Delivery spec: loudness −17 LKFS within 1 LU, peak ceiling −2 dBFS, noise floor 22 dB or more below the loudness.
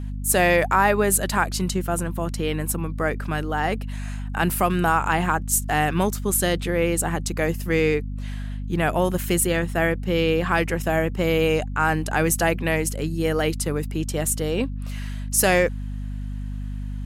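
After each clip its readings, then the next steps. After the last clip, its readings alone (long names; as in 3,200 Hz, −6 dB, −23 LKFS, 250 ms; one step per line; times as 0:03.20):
mains hum 50 Hz; hum harmonics up to 250 Hz; level of the hum −27 dBFS; integrated loudness −22.5 LKFS; sample peak −6.0 dBFS; target loudness −17.0 LKFS
→ hum removal 50 Hz, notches 5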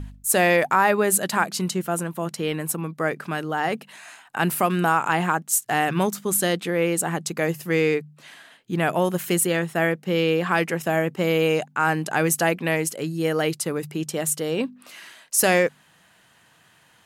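mains hum none found; integrated loudness −23.0 LKFS; sample peak −6.5 dBFS; target loudness −17.0 LKFS
→ level +6 dB
brickwall limiter −2 dBFS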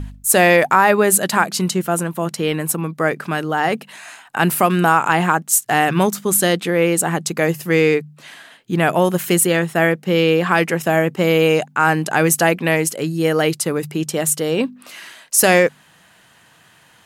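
integrated loudness −17.0 LKFS; sample peak −2.0 dBFS; background noise floor −52 dBFS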